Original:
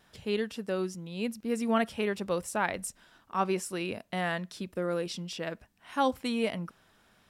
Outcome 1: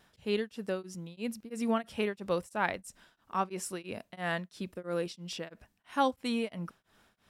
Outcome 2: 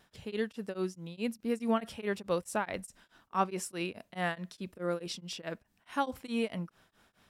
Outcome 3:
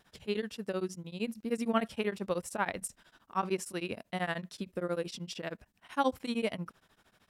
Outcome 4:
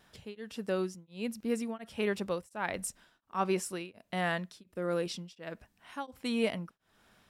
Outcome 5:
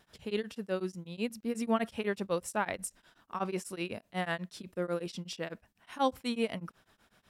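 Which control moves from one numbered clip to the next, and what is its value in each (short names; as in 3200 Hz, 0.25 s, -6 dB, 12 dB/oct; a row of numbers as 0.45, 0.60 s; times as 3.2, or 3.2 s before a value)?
beating tremolo, nulls at: 3, 4.7, 13, 1.4, 8.1 Hz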